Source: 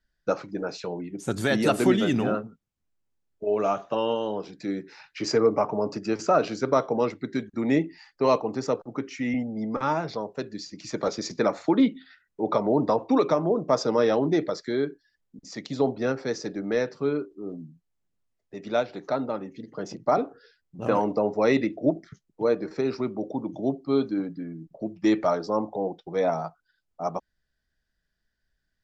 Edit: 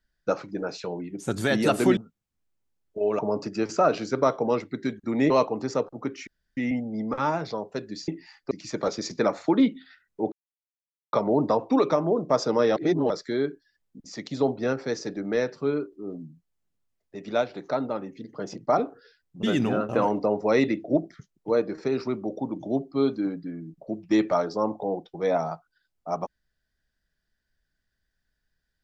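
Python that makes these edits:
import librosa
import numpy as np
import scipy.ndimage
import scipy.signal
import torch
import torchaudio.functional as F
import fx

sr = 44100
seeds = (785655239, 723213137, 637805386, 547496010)

y = fx.edit(x, sr, fx.move(start_s=1.97, length_s=0.46, to_s=20.82),
    fx.cut(start_s=3.65, length_s=2.04),
    fx.move(start_s=7.8, length_s=0.43, to_s=10.71),
    fx.insert_room_tone(at_s=9.2, length_s=0.3),
    fx.insert_silence(at_s=12.52, length_s=0.81),
    fx.reverse_span(start_s=14.15, length_s=0.34), tone=tone)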